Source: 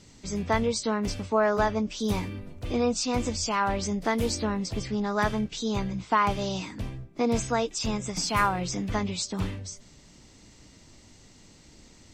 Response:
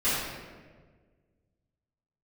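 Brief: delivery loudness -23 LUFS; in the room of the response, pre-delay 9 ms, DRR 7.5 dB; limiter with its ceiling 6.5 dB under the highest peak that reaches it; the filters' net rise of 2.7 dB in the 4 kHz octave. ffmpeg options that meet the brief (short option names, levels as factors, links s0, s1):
-filter_complex "[0:a]equalizer=f=4000:t=o:g=3.5,alimiter=limit=0.15:level=0:latency=1,asplit=2[s0][s1];[1:a]atrim=start_sample=2205,adelay=9[s2];[s1][s2]afir=irnorm=-1:irlink=0,volume=0.0944[s3];[s0][s3]amix=inputs=2:normalize=0,volume=1.78"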